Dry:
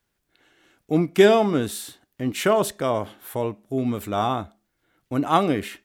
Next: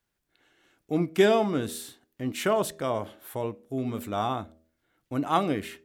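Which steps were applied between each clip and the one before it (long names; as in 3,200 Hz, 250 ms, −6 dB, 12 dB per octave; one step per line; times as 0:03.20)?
hum removal 80.22 Hz, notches 8
level −5 dB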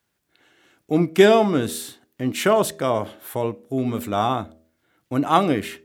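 high-pass filter 72 Hz
level +7 dB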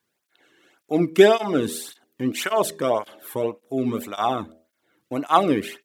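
through-zero flanger with one copy inverted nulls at 1.8 Hz, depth 1.6 ms
level +1.5 dB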